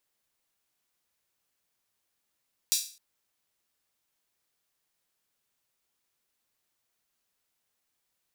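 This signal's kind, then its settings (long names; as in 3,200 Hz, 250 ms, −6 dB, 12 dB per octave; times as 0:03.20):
open synth hi-hat length 0.26 s, high-pass 4,600 Hz, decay 0.40 s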